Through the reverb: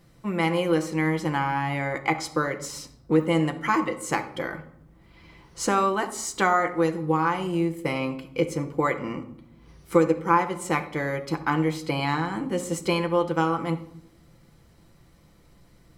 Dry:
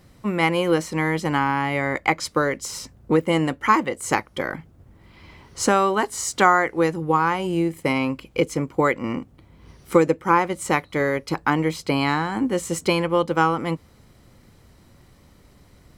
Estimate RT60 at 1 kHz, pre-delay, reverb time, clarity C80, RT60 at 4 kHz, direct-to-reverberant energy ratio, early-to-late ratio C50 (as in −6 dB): 0.65 s, 6 ms, 0.70 s, 15.5 dB, 0.50 s, 5.0 dB, 12.0 dB